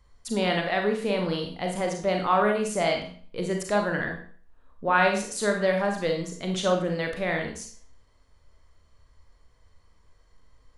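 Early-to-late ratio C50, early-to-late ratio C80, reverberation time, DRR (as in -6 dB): 5.5 dB, 10.5 dB, 0.50 s, 2.0 dB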